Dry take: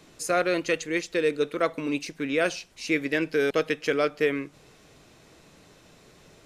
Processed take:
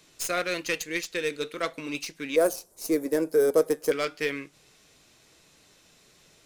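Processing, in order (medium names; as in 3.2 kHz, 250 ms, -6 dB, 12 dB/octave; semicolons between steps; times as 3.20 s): tracing distortion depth 0.043 ms; in parallel at -8.5 dB: crossover distortion -43 dBFS; on the sum: treble shelf 2 kHz +11.5 dB; flange 0.37 Hz, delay 1.8 ms, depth 6.6 ms, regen -79%; 2.36–3.92 s: FFT filter 150 Hz 0 dB, 510 Hz +11 dB, 1.1 kHz +2 dB, 2.7 kHz -20 dB, 11 kHz +10 dB; trim -5 dB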